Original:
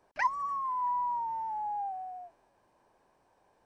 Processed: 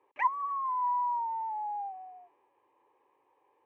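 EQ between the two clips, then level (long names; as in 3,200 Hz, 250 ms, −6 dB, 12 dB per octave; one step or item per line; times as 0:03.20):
high-pass filter 170 Hz 12 dB per octave
bass and treble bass −5 dB, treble −14 dB
phaser with its sweep stopped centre 990 Hz, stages 8
+1.5 dB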